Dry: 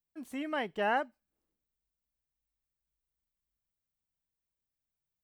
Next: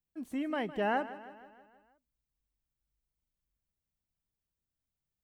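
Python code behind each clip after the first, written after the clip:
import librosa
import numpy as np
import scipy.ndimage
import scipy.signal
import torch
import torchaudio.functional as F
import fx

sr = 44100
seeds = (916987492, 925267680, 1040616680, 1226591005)

y = fx.low_shelf(x, sr, hz=390.0, db=10.0)
y = fx.echo_feedback(y, sr, ms=159, feedback_pct=57, wet_db=-15)
y = y * librosa.db_to_amplitude(-3.5)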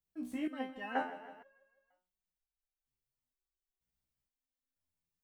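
y = fx.resonator_held(x, sr, hz=2.1, low_hz=61.0, high_hz=780.0)
y = y * librosa.db_to_amplitude(6.5)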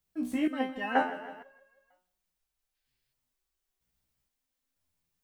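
y = fx.spec_box(x, sr, start_s=2.74, length_s=0.39, low_hz=1500.0, high_hz=5300.0, gain_db=7)
y = y + 10.0 ** (-23.0 / 20.0) * np.pad(y, (int(171 * sr / 1000.0), 0))[:len(y)]
y = y * librosa.db_to_amplitude(8.5)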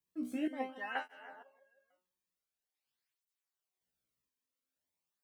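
y = fx.flanger_cancel(x, sr, hz=0.46, depth_ms=1.5)
y = y * librosa.db_to_amplitude(-4.5)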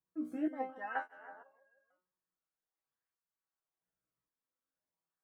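y = fx.high_shelf_res(x, sr, hz=2000.0, db=-10.5, q=1.5)
y = y + 0.41 * np.pad(y, (int(6.2 * sr / 1000.0), 0))[:len(y)]
y = y * librosa.db_to_amplitude(-1.5)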